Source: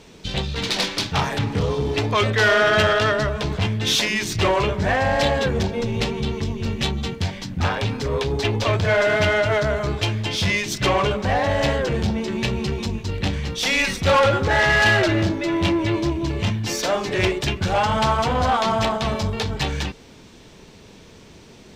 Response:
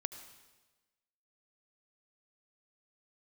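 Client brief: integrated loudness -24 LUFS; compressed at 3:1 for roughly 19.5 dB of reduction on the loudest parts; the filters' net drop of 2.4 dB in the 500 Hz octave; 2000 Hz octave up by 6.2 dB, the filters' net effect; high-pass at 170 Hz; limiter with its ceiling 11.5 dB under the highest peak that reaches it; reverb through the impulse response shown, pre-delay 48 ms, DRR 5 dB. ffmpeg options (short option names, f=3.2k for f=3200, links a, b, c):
-filter_complex "[0:a]highpass=170,equalizer=f=500:t=o:g=-3.5,equalizer=f=2k:t=o:g=8,acompressor=threshold=-37dB:ratio=3,alimiter=level_in=6dB:limit=-24dB:level=0:latency=1,volume=-6dB,asplit=2[a][b];[1:a]atrim=start_sample=2205,adelay=48[c];[b][c]afir=irnorm=-1:irlink=0,volume=-4dB[d];[a][d]amix=inputs=2:normalize=0,volume=13dB"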